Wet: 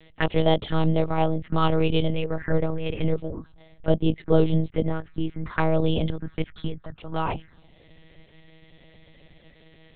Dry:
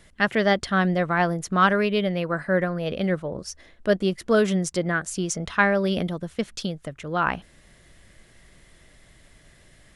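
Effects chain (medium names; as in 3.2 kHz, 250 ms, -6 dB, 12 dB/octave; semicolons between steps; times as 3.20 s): 3.39–5.70 s: treble shelf 2.5 kHz -6.5 dB; touch-sensitive phaser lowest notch 200 Hz, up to 1.7 kHz, full sweep at -20.5 dBFS; monotone LPC vocoder at 8 kHz 160 Hz; trim +3 dB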